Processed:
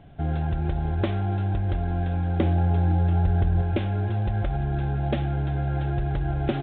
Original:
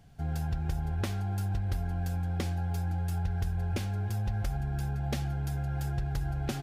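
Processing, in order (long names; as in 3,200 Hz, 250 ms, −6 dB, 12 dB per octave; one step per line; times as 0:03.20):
in parallel at +2 dB: brickwall limiter −27.5 dBFS, peak gain reduction 7.5 dB
0:02.40–0:03.62: on the sum: tilt shelving filter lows +4 dB, about 1,500 Hz
hollow resonant body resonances 340/590 Hz, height 9 dB, ringing for 25 ms
IMA ADPCM 32 kbit/s 8,000 Hz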